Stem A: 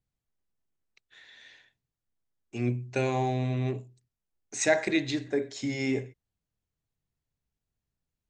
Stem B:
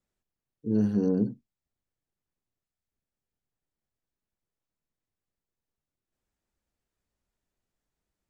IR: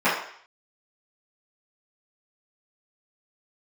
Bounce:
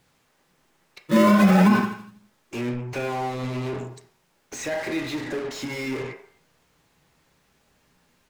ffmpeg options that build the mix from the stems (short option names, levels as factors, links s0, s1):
-filter_complex "[0:a]acompressor=threshold=0.0178:ratio=2,asplit=2[s0][s1];[s1]highpass=f=720:p=1,volume=39.8,asoftclip=type=tanh:threshold=0.0237[s2];[s0][s2]amix=inputs=2:normalize=0,lowpass=f=4700:p=1,volume=0.501,volume=1.33,asplit=2[s3][s4];[s4]volume=0.0891[s5];[1:a]lowshelf=f=280:g=10.5,acrusher=samples=31:mix=1:aa=0.000001:lfo=1:lforange=49.6:lforate=0.39,asplit=2[s6][s7];[s7]adelay=3.7,afreqshift=0.32[s8];[s6][s8]amix=inputs=2:normalize=1,adelay=450,volume=1.12,asplit=3[s9][s10][s11];[s10]volume=0.335[s12];[s11]volume=0.299[s13];[2:a]atrim=start_sample=2205[s14];[s5][s12]amix=inputs=2:normalize=0[s15];[s15][s14]afir=irnorm=-1:irlink=0[s16];[s13]aecho=0:1:82|164|246|328|410|492|574:1|0.5|0.25|0.125|0.0625|0.0312|0.0156[s17];[s3][s9][s16][s17]amix=inputs=4:normalize=0,lowshelf=f=410:g=5,alimiter=limit=0.376:level=0:latency=1:release=100"